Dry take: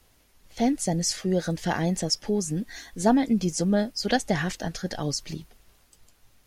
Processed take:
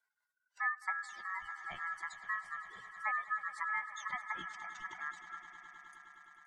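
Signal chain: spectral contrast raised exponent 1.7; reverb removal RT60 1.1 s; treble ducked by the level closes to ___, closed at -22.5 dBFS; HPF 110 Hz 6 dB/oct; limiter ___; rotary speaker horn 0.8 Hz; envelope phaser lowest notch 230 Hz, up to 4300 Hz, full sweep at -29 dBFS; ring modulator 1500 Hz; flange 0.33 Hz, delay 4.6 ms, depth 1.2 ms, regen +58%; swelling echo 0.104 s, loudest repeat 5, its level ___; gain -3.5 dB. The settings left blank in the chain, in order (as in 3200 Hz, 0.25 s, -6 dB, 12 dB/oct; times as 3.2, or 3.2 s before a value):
2200 Hz, -15 dBFS, -18 dB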